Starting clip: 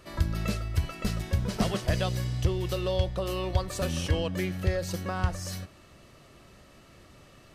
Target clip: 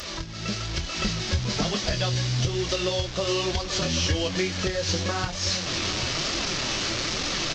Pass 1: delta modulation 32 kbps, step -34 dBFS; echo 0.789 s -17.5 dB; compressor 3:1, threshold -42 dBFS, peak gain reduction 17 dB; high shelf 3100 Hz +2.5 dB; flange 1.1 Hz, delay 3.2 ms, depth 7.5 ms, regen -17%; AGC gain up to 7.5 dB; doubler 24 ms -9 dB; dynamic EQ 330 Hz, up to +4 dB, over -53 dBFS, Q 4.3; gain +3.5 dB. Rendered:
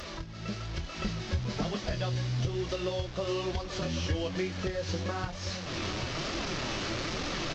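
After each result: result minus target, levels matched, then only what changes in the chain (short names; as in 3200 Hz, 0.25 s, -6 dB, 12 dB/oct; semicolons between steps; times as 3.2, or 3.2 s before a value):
8000 Hz band -6.0 dB; compressor: peak gain reduction +5 dB
change: high shelf 3100 Hz +14.5 dB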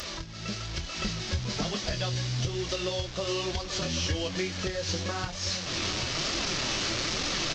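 compressor: peak gain reduction +5 dB
change: compressor 3:1, threshold -34.5 dBFS, peak gain reduction 12 dB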